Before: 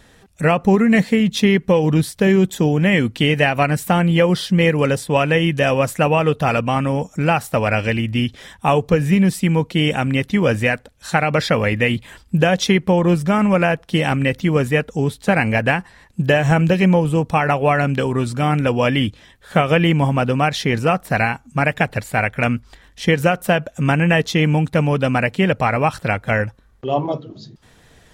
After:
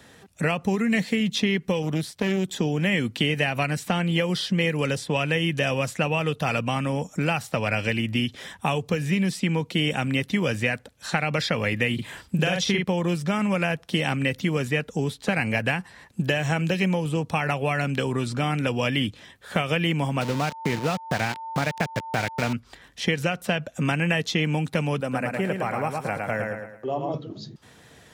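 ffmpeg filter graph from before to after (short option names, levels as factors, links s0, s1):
-filter_complex "[0:a]asettb=1/sr,asplit=3[s0][s1][s2];[s0]atrim=end=1.824[s3];[s1]atrim=start=1.82:end=2.48,asetpts=PTS-STARTPTS,afade=t=in:d=0.004:c=qsin,afade=t=out:st=0.656:d=0.004:c=qsin,highshelf=f=9900:g=5.5,aeval=exprs='(tanh(2.82*val(0)+0.8)-tanh(0.8))/2.82':c=same[s4];[s2]atrim=start=2.476[s5];[s3][s4]acrossfade=d=0.004:c1=hsin:c2=qsin[s6];[s6][s5]acrossfade=d=0.004:c1=qsin:c2=hsin,asettb=1/sr,asplit=3[s7][s8][s9];[s7]atrim=end=11.944[s10];[s8]atrim=start=11.94:end=12.84,asetpts=PTS-STARTPTS,afade=t=in:d=0.004:c=qsin,afade=t=out:st=0.896:d=0.004:c=qsin,asubboost=boost=9.5:cutoff=130,asplit=2[s11][s12];[s12]adelay=45,volume=0.708[s13];[s11][s13]amix=inputs=2:normalize=0,atrim=end_sample=39690[s14];[s9]atrim=start=12.836[s15];[s10][s14]acrossfade=d=0.004:c1=hsin:c2=qsin[s16];[s16][s15]acrossfade=d=0.004:c1=qsin:c2=hsin,asettb=1/sr,asplit=3[s17][s18][s19];[s17]atrim=end=20.214[s20];[s18]atrim=start=20.21:end=22.53,asetpts=PTS-STARTPTS,afade=t=in:d=0.004:c=qsin,afade=t=out:st=2.316:d=0.004:c=qsin,lowpass=1700,aeval=exprs='val(0)*gte(abs(val(0)),0.075)':c=same,aeval=exprs='val(0)+0.0282*sin(2*PI*900*n/s)':c=same[s21];[s19]atrim=start=22.526[s22];[s20][s21]acrossfade=d=0.004:c1=hsin:c2=qsin[s23];[s23][s22]acrossfade=d=0.004:c1=qsin:c2=hsin,asettb=1/sr,asplit=3[s24][s25][s26];[s24]atrim=end=25.004[s27];[s25]atrim=start=25:end=27.14,asetpts=PTS-STARTPTS,afade=t=in:d=0.004:c=qsin,afade=t=out:st=2.136:d=0.004:c=qsin,highpass=f=370:p=1,equalizer=f=3400:t=o:w=1.7:g=-14,aecho=1:1:109|218|327|436|545:0.596|0.226|0.086|0.0327|0.0124,atrim=end_sample=94374[s28];[s26]atrim=start=27.136[s29];[s27][s28]acrossfade=d=0.004:c1=hsin:c2=qsin[s30];[s30][s29]acrossfade=d=0.004:c1=qsin:c2=hsin,highpass=98,acrossover=split=190|2300|7000[s31][s32][s33][s34];[s31]acompressor=threshold=0.0316:ratio=4[s35];[s32]acompressor=threshold=0.0501:ratio=4[s36];[s33]acompressor=threshold=0.0501:ratio=4[s37];[s34]acompressor=threshold=0.00316:ratio=4[s38];[s35][s36][s37][s38]amix=inputs=4:normalize=0"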